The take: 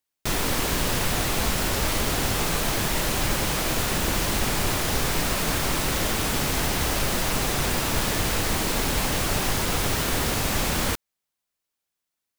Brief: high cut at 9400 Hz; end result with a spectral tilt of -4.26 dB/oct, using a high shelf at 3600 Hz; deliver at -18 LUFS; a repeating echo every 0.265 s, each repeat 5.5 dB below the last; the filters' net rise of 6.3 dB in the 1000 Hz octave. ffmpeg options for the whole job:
-af "lowpass=9.4k,equalizer=f=1k:t=o:g=8.5,highshelf=f=3.6k:g=-8,aecho=1:1:265|530|795|1060|1325|1590|1855:0.531|0.281|0.149|0.079|0.0419|0.0222|0.0118,volume=5dB"

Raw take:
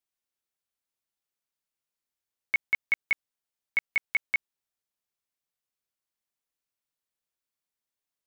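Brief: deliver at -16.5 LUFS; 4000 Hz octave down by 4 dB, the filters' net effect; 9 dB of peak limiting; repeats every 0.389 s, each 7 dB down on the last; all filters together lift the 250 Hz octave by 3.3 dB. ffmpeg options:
-af "equalizer=f=250:t=o:g=4.5,equalizer=f=4k:t=o:g=-6,alimiter=level_in=3dB:limit=-24dB:level=0:latency=1,volume=-3dB,aecho=1:1:389|778|1167|1556|1945:0.447|0.201|0.0905|0.0407|0.0183,volume=23dB"

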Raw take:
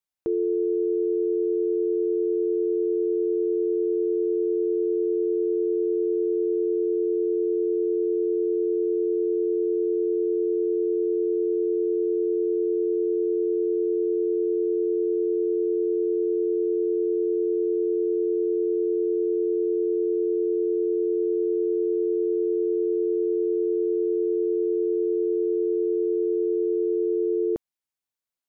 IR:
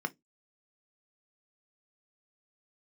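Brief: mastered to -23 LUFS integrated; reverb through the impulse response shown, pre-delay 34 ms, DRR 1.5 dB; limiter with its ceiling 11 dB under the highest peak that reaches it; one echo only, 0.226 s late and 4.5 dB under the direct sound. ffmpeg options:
-filter_complex "[0:a]alimiter=level_in=4.5dB:limit=-24dB:level=0:latency=1,volume=-4.5dB,aecho=1:1:226:0.596,asplit=2[a][b];[1:a]atrim=start_sample=2205,adelay=34[c];[b][c]afir=irnorm=-1:irlink=0,volume=-6dB[d];[a][d]amix=inputs=2:normalize=0,volume=5dB"

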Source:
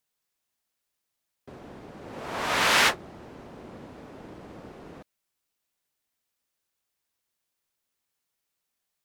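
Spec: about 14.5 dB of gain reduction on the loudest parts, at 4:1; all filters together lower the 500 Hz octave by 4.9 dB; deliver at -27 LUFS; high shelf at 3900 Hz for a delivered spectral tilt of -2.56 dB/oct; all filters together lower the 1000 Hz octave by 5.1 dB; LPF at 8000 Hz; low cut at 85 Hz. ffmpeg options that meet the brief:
-af "highpass=85,lowpass=8k,equalizer=f=500:t=o:g=-4.5,equalizer=f=1k:t=o:g=-6,highshelf=f=3.9k:g=5,acompressor=threshold=-35dB:ratio=4,volume=13.5dB"

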